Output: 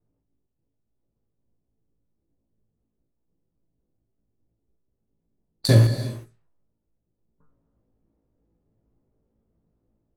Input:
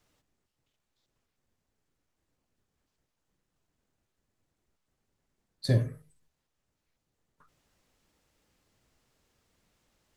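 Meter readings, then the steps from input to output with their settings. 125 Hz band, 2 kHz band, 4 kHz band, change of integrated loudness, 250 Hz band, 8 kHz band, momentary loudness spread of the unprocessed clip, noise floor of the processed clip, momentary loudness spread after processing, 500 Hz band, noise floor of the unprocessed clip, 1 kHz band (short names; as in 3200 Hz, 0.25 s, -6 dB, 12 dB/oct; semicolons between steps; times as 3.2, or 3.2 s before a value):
+10.5 dB, +11.0 dB, +12.0 dB, +10.0 dB, +9.5 dB, +15.0 dB, 10 LU, -78 dBFS, 13 LU, +9.5 dB, -83 dBFS, n/a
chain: high shelf 5000 Hz +8 dB; on a send: flutter echo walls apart 3.1 m, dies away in 0.23 s; on the sum: AGC gain up to 3.5 dB; in parallel at -3.5 dB: sample gate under -22.5 dBFS; on the sum: non-linear reverb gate 0.4 s flat, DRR 9 dB; low-pass opened by the level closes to 390 Hz, open at -29 dBFS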